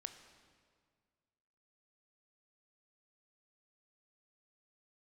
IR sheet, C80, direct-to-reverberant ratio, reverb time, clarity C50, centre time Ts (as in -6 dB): 10.5 dB, 8.0 dB, 1.9 s, 9.5 dB, 21 ms